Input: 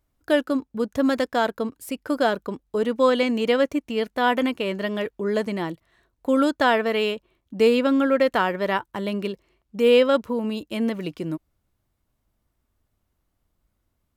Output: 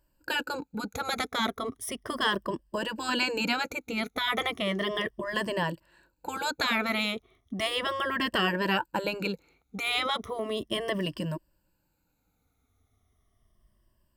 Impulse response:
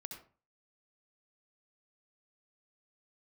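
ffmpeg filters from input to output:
-af "afftfilt=real='re*pow(10,15/40*sin(2*PI*(1.3*log(max(b,1)*sr/1024/100)/log(2)-(-0.35)*(pts-256)/sr)))':imag='im*pow(10,15/40*sin(2*PI*(1.3*log(max(b,1)*sr/1024/100)/log(2)-(-0.35)*(pts-256)/sr)))':win_size=1024:overlap=0.75,afftfilt=real='re*lt(hypot(re,im),0.398)':imag='im*lt(hypot(re,im),0.398)':win_size=1024:overlap=0.75"

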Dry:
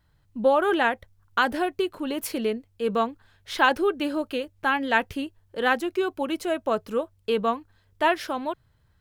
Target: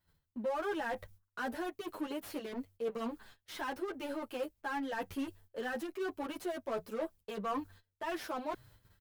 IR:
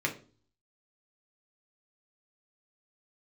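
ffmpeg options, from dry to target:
-filter_complex "[0:a]asplit=2[a][b];[b]adynamicsmooth=sensitivity=6.5:basefreq=530,volume=1dB[c];[a][c]amix=inputs=2:normalize=0,aemphasis=mode=production:type=50fm,alimiter=limit=-9dB:level=0:latency=1:release=412,highshelf=f=3.2k:g=9,bandreject=f=60:t=h:w=6,bandreject=f=120:t=h:w=6,bandreject=f=180:t=h:w=6,areverse,acompressor=threshold=-32dB:ratio=8,areverse,agate=range=-17dB:threshold=-54dB:ratio=16:detection=peak,volume=33dB,asoftclip=hard,volume=-33dB,asplit=2[d][e];[e]highpass=f=720:p=1,volume=10dB,asoftclip=type=tanh:threshold=-32.5dB[f];[d][f]amix=inputs=2:normalize=0,lowpass=f=1.4k:p=1,volume=-6dB,asplit=2[g][h];[h]adelay=8.4,afreqshift=-0.77[i];[g][i]amix=inputs=2:normalize=1,volume=5dB"

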